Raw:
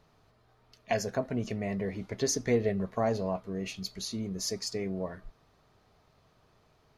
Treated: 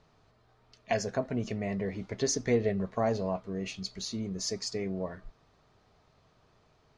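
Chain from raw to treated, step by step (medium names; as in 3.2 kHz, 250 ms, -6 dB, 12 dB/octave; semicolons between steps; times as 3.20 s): low-pass 8.1 kHz 24 dB/octave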